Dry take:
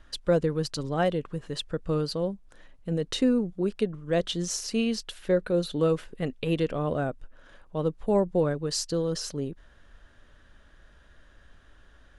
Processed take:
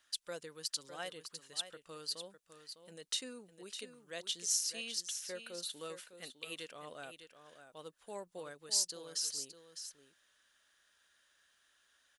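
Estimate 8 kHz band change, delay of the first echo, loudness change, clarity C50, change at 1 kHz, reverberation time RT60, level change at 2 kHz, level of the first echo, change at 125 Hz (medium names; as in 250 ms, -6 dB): +1.0 dB, 605 ms, -11.5 dB, no reverb, -16.5 dB, no reverb, -10.0 dB, -10.0 dB, -31.5 dB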